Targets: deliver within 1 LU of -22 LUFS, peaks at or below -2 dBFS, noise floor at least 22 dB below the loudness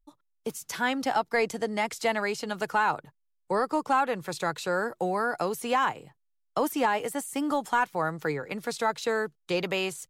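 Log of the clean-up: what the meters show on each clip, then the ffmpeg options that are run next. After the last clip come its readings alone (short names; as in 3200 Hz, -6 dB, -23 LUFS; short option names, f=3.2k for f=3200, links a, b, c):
loudness -28.5 LUFS; peak -14.0 dBFS; loudness target -22.0 LUFS
-> -af "volume=6.5dB"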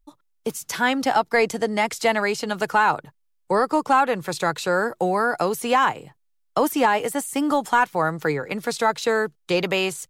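loudness -22.0 LUFS; peak -7.5 dBFS; noise floor -68 dBFS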